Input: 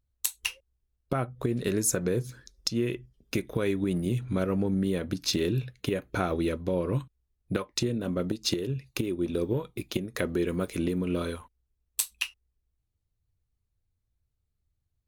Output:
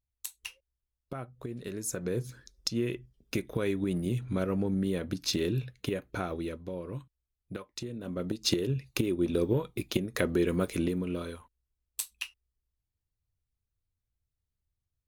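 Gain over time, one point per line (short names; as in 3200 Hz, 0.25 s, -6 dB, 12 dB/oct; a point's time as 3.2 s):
1.78 s -10.5 dB
2.23 s -2.5 dB
5.81 s -2.5 dB
6.82 s -10.5 dB
7.88 s -10.5 dB
8.53 s +1 dB
10.71 s +1 dB
11.25 s -6.5 dB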